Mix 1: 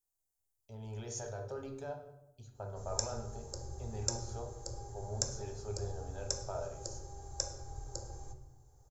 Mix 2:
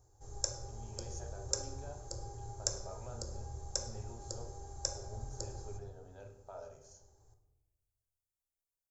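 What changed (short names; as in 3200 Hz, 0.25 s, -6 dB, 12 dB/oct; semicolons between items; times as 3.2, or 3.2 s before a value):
speech -7.5 dB; background: entry -2.55 s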